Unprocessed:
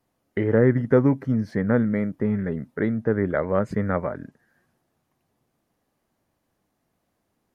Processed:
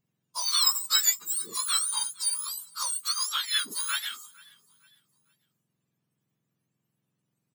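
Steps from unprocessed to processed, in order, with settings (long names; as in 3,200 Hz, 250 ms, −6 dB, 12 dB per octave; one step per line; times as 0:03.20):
frequency axis turned over on the octave scale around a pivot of 1,400 Hz
0:03.73–0:04.24: high-pass filter 220 Hz
repeating echo 456 ms, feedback 47%, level −22.5 dB
noise reduction from a noise print of the clip's start 8 dB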